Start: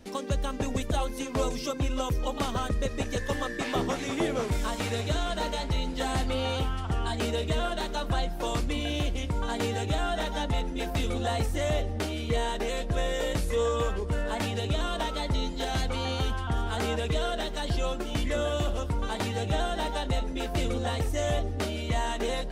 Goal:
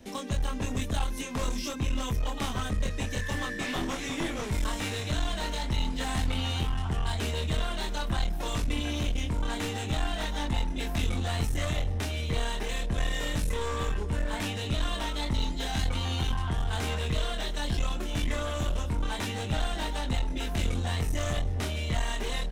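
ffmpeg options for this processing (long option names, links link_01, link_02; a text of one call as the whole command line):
ffmpeg -i in.wav -filter_complex "[0:a]equalizer=frequency=1300:width=4.4:gain=-4,bandreject=frequency=4600:width=12,asplit=2[link_01][link_02];[link_02]adelay=24,volume=-3dB[link_03];[link_01][link_03]amix=inputs=2:normalize=0,aeval=exprs='clip(val(0),-1,0.0398)':channel_layout=same,acrossover=split=320|880|5000[link_04][link_05][link_06][link_07];[link_05]acompressor=threshold=-45dB:ratio=6[link_08];[link_04][link_08][link_06][link_07]amix=inputs=4:normalize=0" out.wav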